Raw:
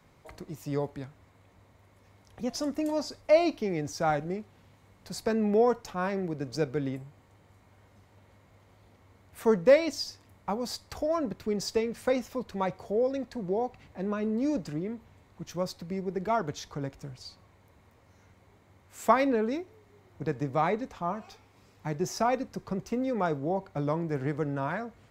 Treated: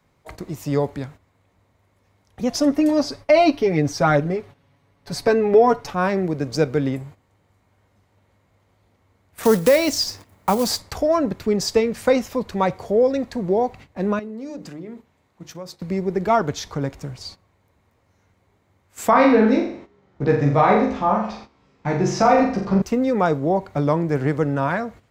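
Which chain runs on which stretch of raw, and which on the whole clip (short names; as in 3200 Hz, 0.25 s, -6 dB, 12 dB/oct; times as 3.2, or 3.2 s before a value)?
2.6–5.9 high shelf 6900 Hz -7 dB + notch 7200 Hz, Q 8.3 + comb 7.1 ms, depth 70%
9.43–10.82 block floating point 5-bit + high shelf 5100 Hz +6 dB + three-band squash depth 40%
14.19–15.81 HPF 120 Hz 6 dB/oct + notches 50/100/150/200/250/300/350/400/450/500 Hz + compressor 2.5:1, threshold -46 dBFS
19.11–22.82 air absorption 110 m + doubler 15 ms -2 dB + flutter echo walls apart 7.2 m, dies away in 0.56 s
whole clip: gate -49 dBFS, range -13 dB; maximiser +14.5 dB; gain -4.5 dB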